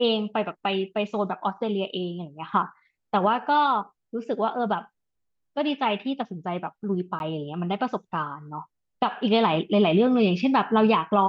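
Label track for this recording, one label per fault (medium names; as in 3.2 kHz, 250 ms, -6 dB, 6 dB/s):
7.190000	7.200000	dropout 11 ms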